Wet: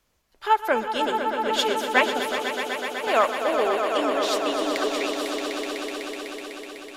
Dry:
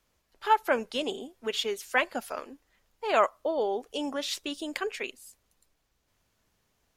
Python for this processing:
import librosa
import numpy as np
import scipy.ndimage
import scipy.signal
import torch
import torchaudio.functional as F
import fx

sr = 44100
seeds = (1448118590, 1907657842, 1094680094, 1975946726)

y = fx.echo_swell(x, sr, ms=125, loudest=5, wet_db=-8)
y = fx.band_widen(y, sr, depth_pct=70, at=(0.88, 3.07))
y = F.gain(torch.from_numpy(y), 3.0).numpy()